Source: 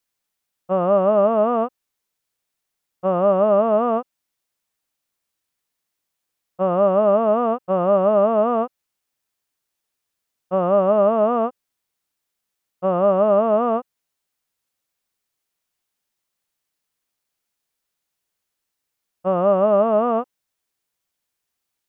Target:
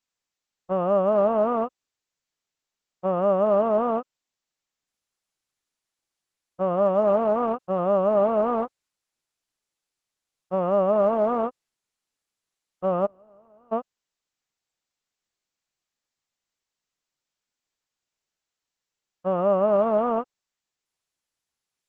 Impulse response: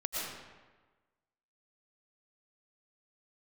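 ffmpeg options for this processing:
-filter_complex "[0:a]asplit=3[s0][s1][s2];[s0]afade=t=out:st=13.05:d=0.02[s3];[s1]agate=range=0.02:threshold=0.562:ratio=16:detection=peak,afade=t=in:st=13.05:d=0.02,afade=t=out:st=13.71:d=0.02[s4];[s2]afade=t=in:st=13.71:d=0.02[s5];[s3][s4][s5]amix=inputs=3:normalize=0,volume=0.631" -ar 48000 -c:a libopus -b:a 12k

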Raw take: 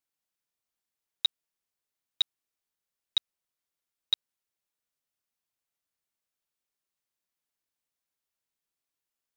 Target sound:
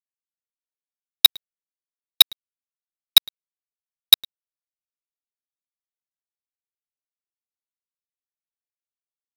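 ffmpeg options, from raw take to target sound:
-af "highshelf=f=3100:t=q:w=1.5:g=10.5,aeval=exprs='0.376*(abs(mod(val(0)/0.376+3,4)-2)-1)':c=same,aderivative,aecho=1:1:109:0.211,adynamicsmooth=sensitivity=1.5:basefreq=1100,aeval=exprs='sgn(val(0))*max(abs(val(0))-0.00251,0)':c=same,apsyclip=22.4,volume=0.891"

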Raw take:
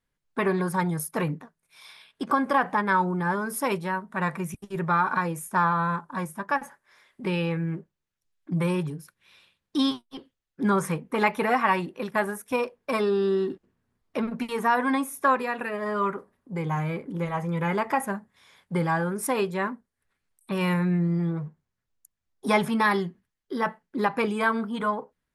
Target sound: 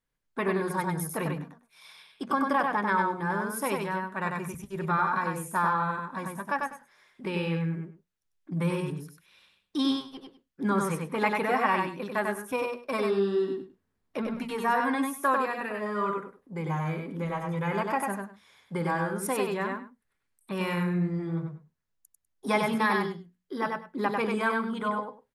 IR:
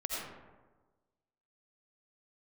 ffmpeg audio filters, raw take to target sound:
-filter_complex "[0:a]bandreject=f=60:t=h:w=6,bandreject=f=120:t=h:w=6,bandreject=f=180:t=h:w=6,bandreject=f=240:t=h:w=6,asplit=2[s0][s1];[s1]aecho=0:1:96|198:0.668|0.119[s2];[s0][s2]amix=inputs=2:normalize=0,volume=0.631"

